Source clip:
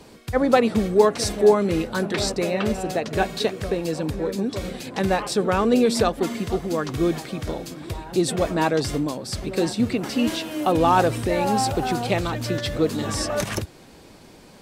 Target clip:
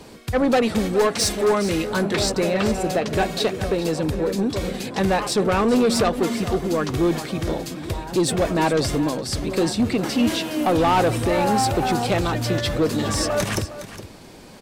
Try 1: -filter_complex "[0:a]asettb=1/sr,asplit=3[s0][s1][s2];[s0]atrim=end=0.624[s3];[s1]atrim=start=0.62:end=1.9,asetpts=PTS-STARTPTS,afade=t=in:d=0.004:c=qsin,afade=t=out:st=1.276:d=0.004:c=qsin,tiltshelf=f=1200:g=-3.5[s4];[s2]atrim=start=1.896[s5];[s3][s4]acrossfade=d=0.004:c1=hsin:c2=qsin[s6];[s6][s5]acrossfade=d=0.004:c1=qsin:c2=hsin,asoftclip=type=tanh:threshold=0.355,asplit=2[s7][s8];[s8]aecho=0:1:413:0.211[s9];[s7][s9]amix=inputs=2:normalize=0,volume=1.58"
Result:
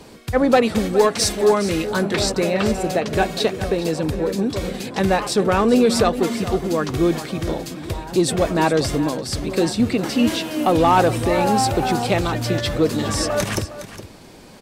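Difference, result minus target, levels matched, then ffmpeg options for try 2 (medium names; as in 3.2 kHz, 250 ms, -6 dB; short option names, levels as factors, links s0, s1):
saturation: distortion -10 dB
-filter_complex "[0:a]asettb=1/sr,asplit=3[s0][s1][s2];[s0]atrim=end=0.624[s3];[s1]atrim=start=0.62:end=1.9,asetpts=PTS-STARTPTS,afade=t=in:d=0.004:c=qsin,afade=t=out:st=1.276:d=0.004:c=qsin,tiltshelf=f=1200:g=-3.5[s4];[s2]atrim=start=1.896[s5];[s3][s4]acrossfade=d=0.004:c1=hsin:c2=qsin[s6];[s6][s5]acrossfade=d=0.004:c1=qsin:c2=hsin,asoftclip=type=tanh:threshold=0.141,asplit=2[s7][s8];[s8]aecho=0:1:413:0.211[s9];[s7][s9]amix=inputs=2:normalize=0,volume=1.58"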